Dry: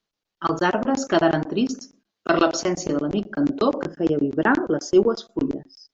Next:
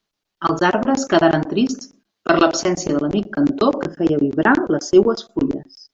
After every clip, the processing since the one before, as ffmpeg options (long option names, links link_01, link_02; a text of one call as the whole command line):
ffmpeg -i in.wav -af "bandreject=frequency=490:width=12,volume=4.5dB" out.wav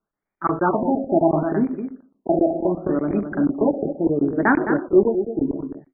ffmpeg -i in.wav -af "aecho=1:1:214:0.376,afftfilt=real='re*lt(b*sr/1024,810*pow(2500/810,0.5+0.5*sin(2*PI*0.71*pts/sr)))':imag='im*lt(b*sr/1024,810*pow(2500/810,0.5+0.5*sin(2*PI*0.71*pts/sr)))':win_size=1024:overlap=0.75,volume=-3dB" out.wav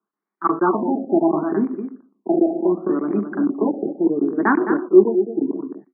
ffmpeg -i in.wav -af "highpass=frequency=200:width=0.5412,highpass=frequency=200:width=1.3066,equalizer=frequency=200:width_type=q:width=4:gain=6,equalizer=frequency=360:width_type=q:width=4:gain=7,equalizer=frequency=580:width_type=q:width=4:gain=-7,equalizer=frequency=1100:width_type=q:width=4:gain=8,lowpass=frequency=2100:width=0.5412,lowpass=frequency=2100:width=1.3066,volume=-2dB" out.wav